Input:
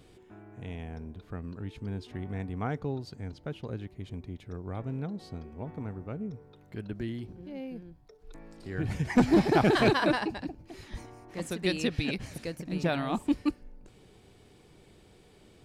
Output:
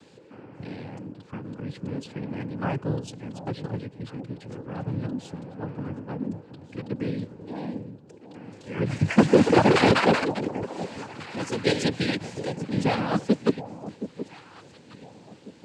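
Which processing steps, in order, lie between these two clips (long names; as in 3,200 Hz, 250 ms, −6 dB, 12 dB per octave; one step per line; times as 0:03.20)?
cochlear-implant simulation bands 8
delay that swaps between a low-pass and a high-pass 722 ms, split 880 Hz, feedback 54%, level −12 dB
level +5.5 dB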